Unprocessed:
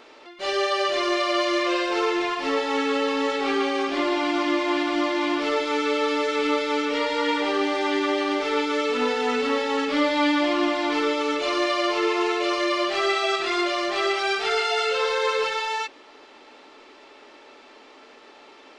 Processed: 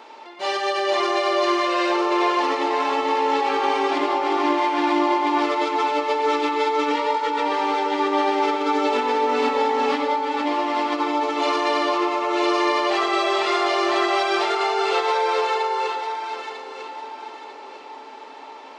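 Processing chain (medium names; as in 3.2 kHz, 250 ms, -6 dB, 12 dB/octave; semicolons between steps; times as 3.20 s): rattle on loud lows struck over -32 dBFS, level -28 dBFS; high-pass 200 Hz 12 dB/octave; peaking EQ 890 Hz +13.5 dB 0.33 oct; compressor with a negative ratio -23 dBFS, ratio -1; echo whose repeats swap between lows and highs 474 ms, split 1.2 kHz, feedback 58%, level -2.5 dB; on a send at -7 dB: reverberation RT60 0.75 s, pre-delay 77 ms; on the sum: trim -1.5 dB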